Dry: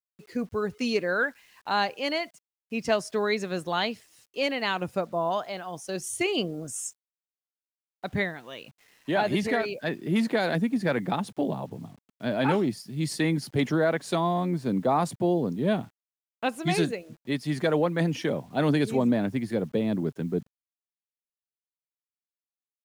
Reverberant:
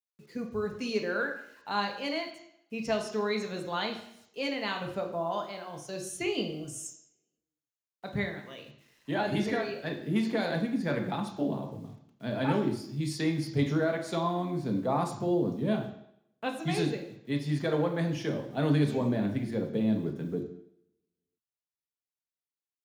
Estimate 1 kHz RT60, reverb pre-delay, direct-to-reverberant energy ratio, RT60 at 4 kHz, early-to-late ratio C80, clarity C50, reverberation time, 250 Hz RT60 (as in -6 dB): 0.75 s, 3 ms, 3.0 dB, 0.70 s, 11.0 dB, 8.0 dB, 0.75 s, 0.70 s